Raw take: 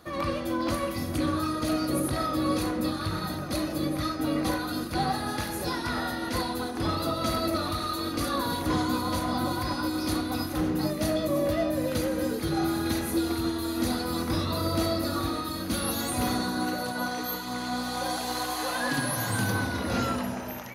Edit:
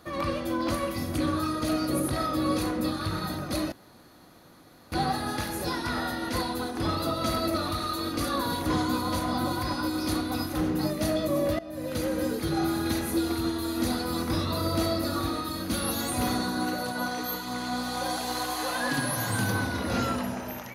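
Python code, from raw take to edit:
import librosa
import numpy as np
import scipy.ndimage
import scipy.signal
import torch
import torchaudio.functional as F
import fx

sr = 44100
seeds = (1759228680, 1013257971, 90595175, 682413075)

y = fx.edit(x, sr, fx.room_tone_fill(start_s=3.72, length_s=1.2),
    fx.fade_in_from(start_s=11.59, length_s=0.51, floor_db=-20.5), tone=tone)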